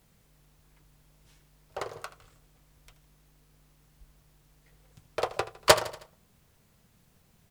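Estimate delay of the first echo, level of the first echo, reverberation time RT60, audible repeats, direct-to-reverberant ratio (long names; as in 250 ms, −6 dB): 79 ms, −16.0 dB, no reverb audible, 3, no reverb audible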